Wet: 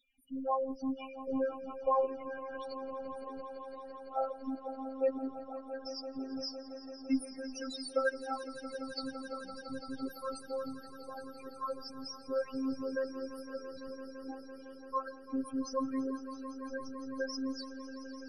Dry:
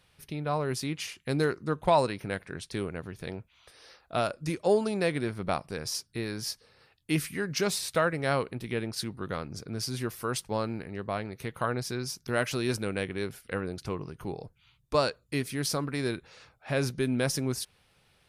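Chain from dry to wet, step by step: bass shelf 430 Hz -10.5 dB; loudest bins only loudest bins 4; phase shifter stages 12, 0.33 Hz, lowest notch 170–4700 Hz; robot voice 266 Hz; echo with a slow build-up 169 ms, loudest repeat 5, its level -16 dB; trim +7 dB

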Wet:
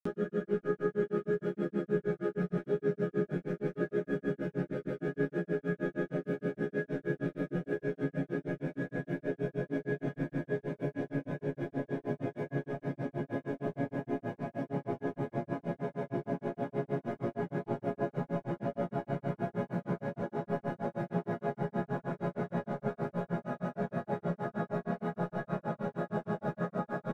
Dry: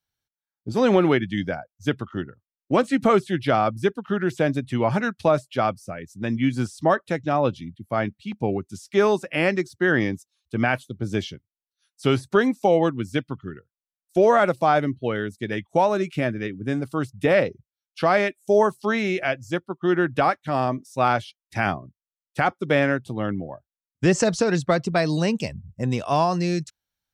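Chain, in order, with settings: high-pass 330 Hz 6 dB/octave; tilt EQ -4.5 dB/octave; crossover distortion -43.5 dBFS; chord resonator C#3 major, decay 0.27 s; Paulstretch 29×, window 1.00 s, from 4.20 s; granulator 136 ms, grains 6.4 per s, pitch spread up and down by 0 st; doubling 12 ms -6 dB; trim +3.5 dB

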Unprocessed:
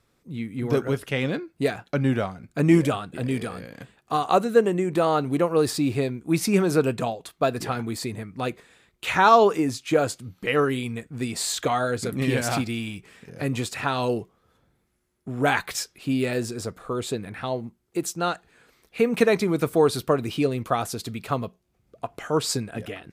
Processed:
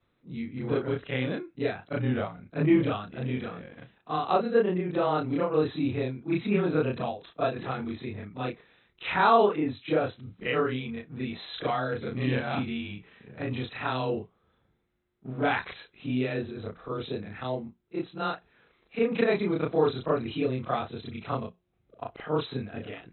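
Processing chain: short-time spectra conjugated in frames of 78 ms; brick-wall FIR low-pass 4.1 kHz; trim -1.5 dB

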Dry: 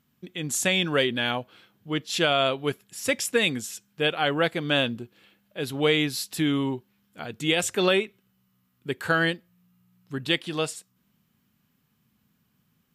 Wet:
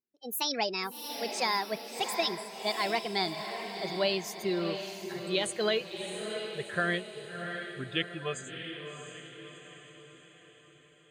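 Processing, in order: gliding tape speed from 162% -> 71%; spectral noise reduction 22 dB; echo that smears into a reverb 687 ms, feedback 50%, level -7 dB; trim -6.5 dB

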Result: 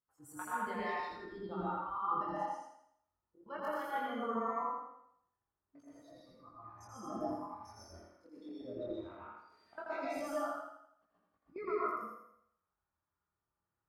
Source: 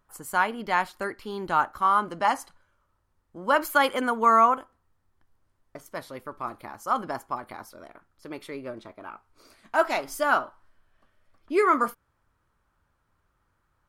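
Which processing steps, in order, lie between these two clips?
low-pass 2.2 kHz 6 dB/octave; spectral noise reduction 21 dB; high-pass 85 Hz 12 dB/octave; level held to a coarse grid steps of 22 dB; slow attack 735 ms; compression 6:1, threshold -52 dBFS, peak gain reduction 20 dB; chorus voices 2, 0.18 Hz, delay 22 ms, depth 4.9 ms; thinning echo 83 ms, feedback 45%, high-pass 200 Hz, level -3 dB; plate-style reverb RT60 0.51 s, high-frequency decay 0.7×, pre-delay 110 ms, DRR -6 dB; trim +13 dB

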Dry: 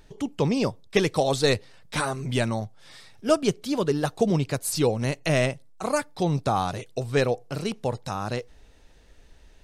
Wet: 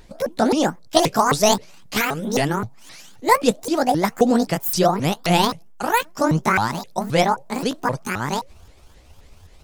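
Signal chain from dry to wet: sawtooth pitch modulation +12 st, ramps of 263 ms; trim +6.5 dB

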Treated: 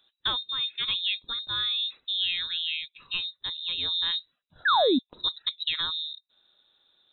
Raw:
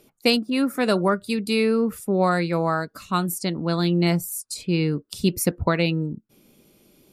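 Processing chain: frequency inversion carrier 3.9 kHz; painted sound fall, 4.65–4.99 s, 230–1800 Hz -13 dBFS; trim -8.5 dB

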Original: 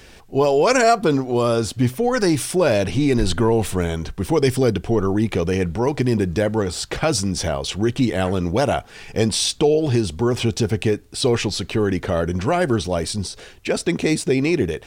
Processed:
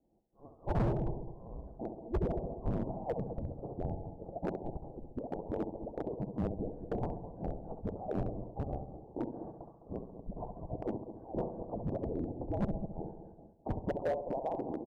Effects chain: four frequency bands reordered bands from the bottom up 2413; flutter echo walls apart 11.6 m, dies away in 0.56 s; expander -27 dBFS; in parallel at +3 dB: compression 12:1, threshold -46 dBFS, peak gain reduction 35 dB; on the sum: steep low-pass 720 Hz 48 dB/octave; on a send: feedback delay 209 ms, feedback 32%, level -11.5 dB; on the sum: overload inside the chain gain 28 dB; trim +1 dB

